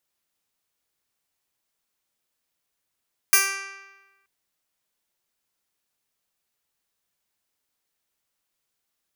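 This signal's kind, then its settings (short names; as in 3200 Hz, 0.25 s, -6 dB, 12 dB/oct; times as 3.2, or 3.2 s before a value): plucked string G4, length 0.93 s, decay 1.21 s, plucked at 0.1, bright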